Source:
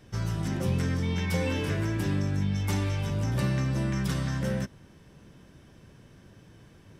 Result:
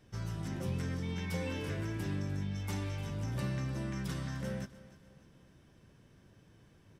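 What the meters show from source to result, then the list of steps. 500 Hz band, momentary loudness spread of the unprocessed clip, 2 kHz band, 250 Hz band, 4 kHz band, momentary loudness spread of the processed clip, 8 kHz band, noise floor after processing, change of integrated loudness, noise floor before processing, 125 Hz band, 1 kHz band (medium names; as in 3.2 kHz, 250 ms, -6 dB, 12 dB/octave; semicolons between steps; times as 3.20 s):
-8.5 dB, 3 LU, -8.5 dB, -8.5 dB, -8.5 dB, 4 LU, -8.5 dB, -63 dBFS, -8.5 dB, -55 dBFS, -9.0 dB, -8.5 dB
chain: feedback delay 301 ms, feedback 41%, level -17 dB; trim -8.5 dB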